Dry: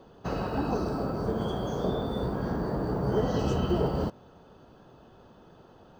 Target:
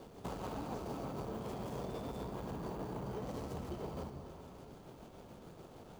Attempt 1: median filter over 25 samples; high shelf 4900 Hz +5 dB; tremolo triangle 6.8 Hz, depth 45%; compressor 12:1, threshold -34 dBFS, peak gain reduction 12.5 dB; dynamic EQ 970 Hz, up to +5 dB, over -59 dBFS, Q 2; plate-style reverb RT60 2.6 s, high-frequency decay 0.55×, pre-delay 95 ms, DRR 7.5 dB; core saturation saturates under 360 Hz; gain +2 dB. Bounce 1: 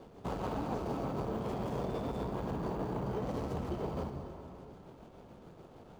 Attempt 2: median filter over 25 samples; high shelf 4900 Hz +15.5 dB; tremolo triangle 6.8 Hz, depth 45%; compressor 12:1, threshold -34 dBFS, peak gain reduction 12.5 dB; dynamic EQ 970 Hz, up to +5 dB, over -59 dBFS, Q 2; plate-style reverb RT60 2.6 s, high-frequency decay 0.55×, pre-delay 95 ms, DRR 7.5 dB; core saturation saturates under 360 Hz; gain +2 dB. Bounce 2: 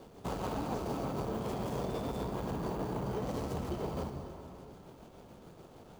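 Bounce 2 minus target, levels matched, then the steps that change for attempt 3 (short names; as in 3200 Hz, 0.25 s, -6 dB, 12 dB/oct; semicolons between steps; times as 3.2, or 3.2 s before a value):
compressor: peak gain reduction -6 dB
change: compressor 12:1, threshold -40.5 dBFS, peak gain reduction 18.5 dB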